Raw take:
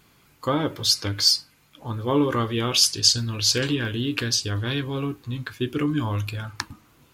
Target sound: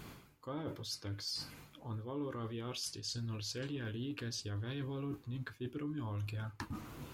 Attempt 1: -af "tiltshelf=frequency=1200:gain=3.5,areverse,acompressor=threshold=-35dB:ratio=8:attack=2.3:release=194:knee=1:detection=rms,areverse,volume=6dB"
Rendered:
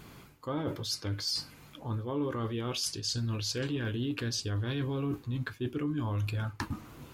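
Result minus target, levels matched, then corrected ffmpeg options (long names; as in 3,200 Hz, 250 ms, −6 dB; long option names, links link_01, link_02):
downward compressor: peak gain reduction −8 dB
-af "tiltshelf=frequency=1200:gain=3.5,areverse,acompressor=threshold=-44dB:ratio=8:attack=2.3:release=194:knee=1:detection=rms,areverse,volume=6dB"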